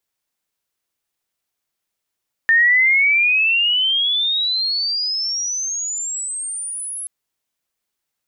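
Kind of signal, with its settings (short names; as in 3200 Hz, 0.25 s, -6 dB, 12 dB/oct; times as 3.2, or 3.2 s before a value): chirp logarithmic 1800 Hz -> 11000 Hz -10 dBFS -> -25.5 dBFS 4.58 s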